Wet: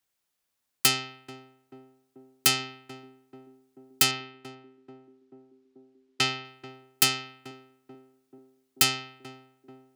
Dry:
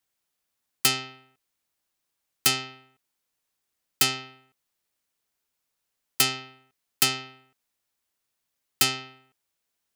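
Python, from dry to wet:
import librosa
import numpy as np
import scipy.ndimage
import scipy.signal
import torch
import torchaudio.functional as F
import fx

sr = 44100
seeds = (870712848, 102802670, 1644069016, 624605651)

p1 = fx.lowpass(x, sr, hz=4500.0, slope=12, at=(4.11, 6.45))
y = p1 + fx.echo_banded(p1, sr, ms=436, feedback_pct=76, hz=320.0, wet_db=-10.0, dry=0)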